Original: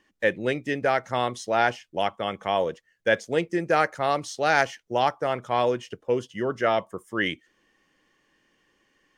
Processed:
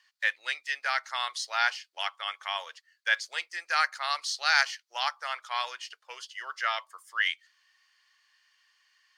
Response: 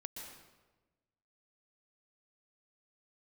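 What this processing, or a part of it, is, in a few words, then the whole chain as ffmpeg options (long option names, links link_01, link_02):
headphones lying on a table: -af "highpass=frequency=1100:width=0.5412,highpass=frequency=1100:width=1.3066,equalizer=frequency=4500:width_type=o:width=0.41:gain=12"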